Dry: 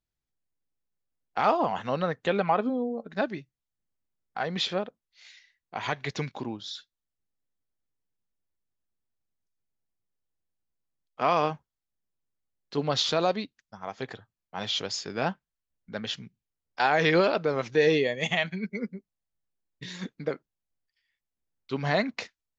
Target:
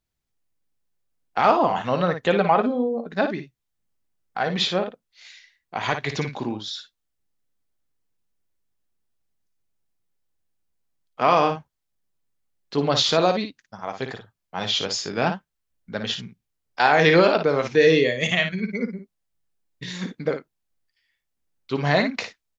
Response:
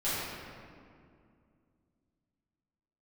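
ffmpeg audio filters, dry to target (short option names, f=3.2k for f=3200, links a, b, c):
-filter_complex "[0:a]asettb=1/sr,asplit=3[a][b][c];[a]atrim=end=17.754[d];[b]atrim=start=17.75:end=18.59,asetpts=PTS-STARTPTS,afade=t=in:d=0.004:c=qsin,afade=t=out:st=0.836:d=0.004:c=qsin,equalizer=f=840:w=3.6:g=-12.5[e];[c]atrim=start=18.586[f];[d][e]acrossfade=d=0.004:c1=hsin:c2=qsin[g];[g][f]acrossfade=d=0.004:c1=qsin:c2=hsin,aecho=1:1:17|56:0.15|0.398,volume=5.5dB"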